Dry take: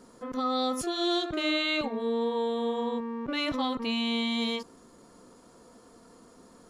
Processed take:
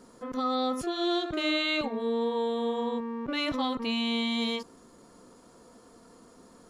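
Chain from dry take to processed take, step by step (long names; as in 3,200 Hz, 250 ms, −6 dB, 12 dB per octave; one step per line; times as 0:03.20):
0:00.55–0:01.26: bass and treble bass +1 dB, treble −7 dB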